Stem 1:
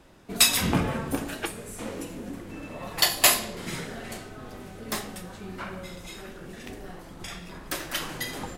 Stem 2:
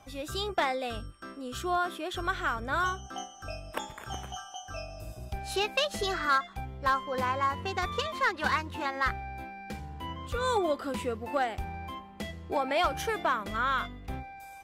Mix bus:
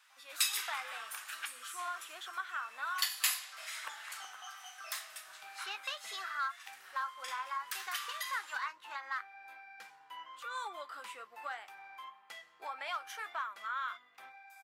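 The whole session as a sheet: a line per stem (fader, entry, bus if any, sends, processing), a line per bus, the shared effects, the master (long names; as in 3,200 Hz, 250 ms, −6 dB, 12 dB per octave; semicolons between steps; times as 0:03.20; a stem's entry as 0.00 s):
−3.5 dB, 0.00 s, no send, Bessel high-pass filter 1,800 Hz, order 2
−3.5 dB, 0.10 s, no send, flanger 1.8 Hz, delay 6.9 ms, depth 3.3 ms, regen −60%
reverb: not used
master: high-pass with resonance 1,200 Hz, resonance Q 1.6; downward compressor 1.5 to 1, threshold −43 dBFS, peak gain reduction 9.5 dB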